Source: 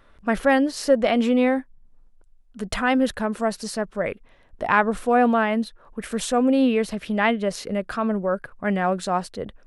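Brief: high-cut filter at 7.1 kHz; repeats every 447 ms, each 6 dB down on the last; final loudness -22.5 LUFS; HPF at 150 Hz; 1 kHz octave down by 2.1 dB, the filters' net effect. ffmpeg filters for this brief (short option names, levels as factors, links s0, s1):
-af "highpass=150,lowpass=7100,equalizer=f=1000:t=o:g=-3,aecho=1:1:447|894|1341|1788|2235|2682:0.501|0.251|0.125|0.0626|0.0313|0.0157,volume=1.06"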